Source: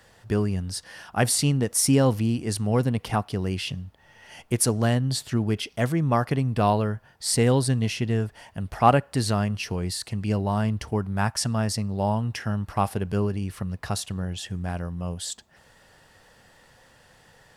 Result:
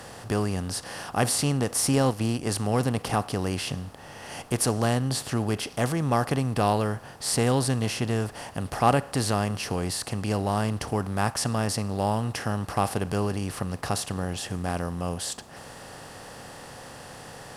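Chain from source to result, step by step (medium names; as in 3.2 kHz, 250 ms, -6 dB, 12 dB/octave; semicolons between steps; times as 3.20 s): spectral levelling over time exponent 0.6; 1.93–2.48 s: transient shaper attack +5 dB, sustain -8 dB; trim -5 dB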